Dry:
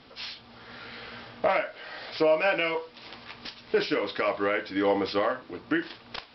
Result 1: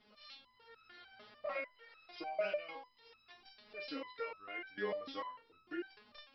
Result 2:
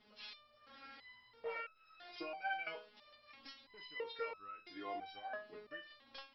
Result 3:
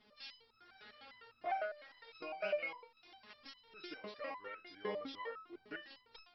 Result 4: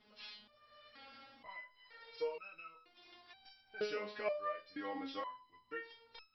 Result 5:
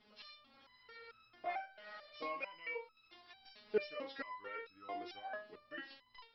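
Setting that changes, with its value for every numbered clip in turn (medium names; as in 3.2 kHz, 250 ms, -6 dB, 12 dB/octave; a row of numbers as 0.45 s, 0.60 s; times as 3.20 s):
resonator arpeggio, rate: 6.7 Hz, 3 Hz, 9.9 Hz, 2.1 Hz, 4.5 Hz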